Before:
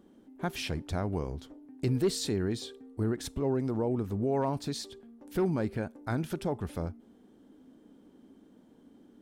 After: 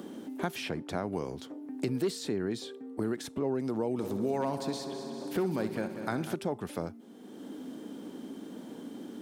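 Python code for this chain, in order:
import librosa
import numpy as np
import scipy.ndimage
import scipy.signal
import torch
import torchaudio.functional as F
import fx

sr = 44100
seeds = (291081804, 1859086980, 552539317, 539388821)

y = scipy.signal.sosfilt(scipy.signal.butter(2, 180.0, 'highpass', fs=sr, output='sos'), x)
y = fx.echo_heads(y, sr, ms=64, heads='first and third', feedback_pct=62, wet_db=-13, at=(3.98, 6.34), fade=0.02)
y = fx.band_squash(y, sr, depth_pct=70)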